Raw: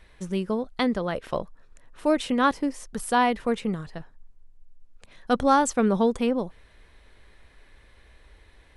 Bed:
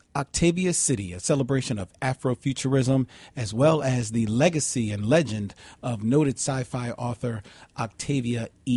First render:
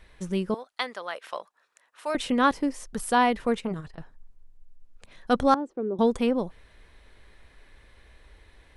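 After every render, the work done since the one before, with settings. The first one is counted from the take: 0.54–2.15 s: high-pass 870 Hz; 3.57–3.98 s: transformer saturation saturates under 370 Hz; 5.54–5.99 s: band-pass filter 360 Hz, Q 3.5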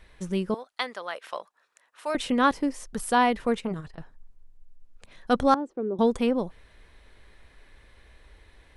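no audible change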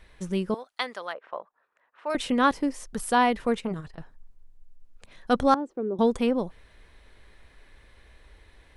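1.12–2.09 s: low-pass 1.1 kHz -> 2.1 kHz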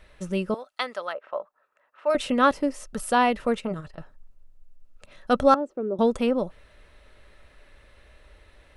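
small resonant body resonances 590/1300/2700 Hz, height 10 dB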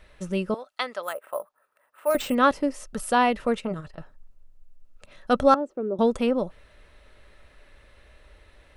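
1.03–2.35 s: careless resampling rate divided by 4×, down none, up hold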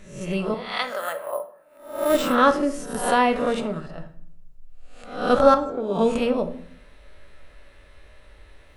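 reverse spectral sustain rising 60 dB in 0.58 s; simulated room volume 98 m³, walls mixed, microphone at 0.33 m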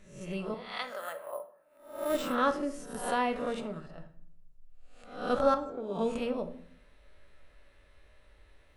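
trim -10.5 dB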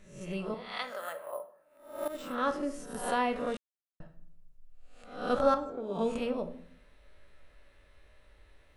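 2.08–2.68 s: fade in, from -14 dB; 3.57–4.00 s: mute

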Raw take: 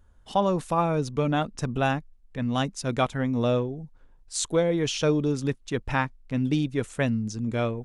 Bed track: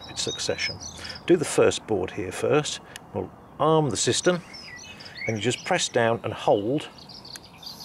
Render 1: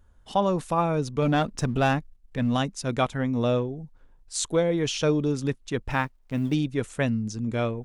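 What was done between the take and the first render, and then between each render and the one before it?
1.22–2.57 s: waveshaping leveller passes 1; 5.90–6.54 s: companding laws mixed up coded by A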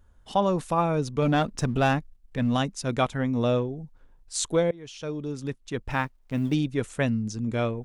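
4.71–6.19 s: fade in, from -22.5 dB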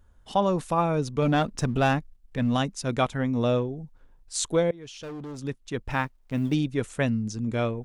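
4.78–5.39 s: hard clipper -34.5 dBFS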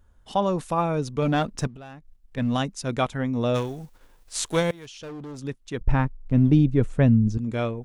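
1.67–2.37 s: compression, threshold -41 dBFS; 3.54–4.85 s: formants flattened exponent 0.6; 5.81–7.38 s: tilt EQ -3.5 dB/octave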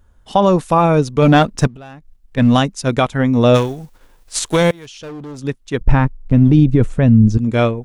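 loudness maximiser +15 dB; upward expansion 1.5:1, over -22 dBFS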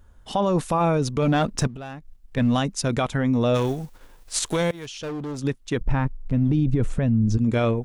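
peak limiter -13.5 dBFS, peak gain reduction 12 dB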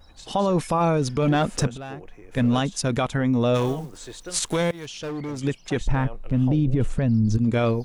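add bed track -17 dB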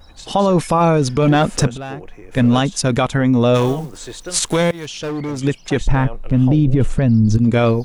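trim +7 dB

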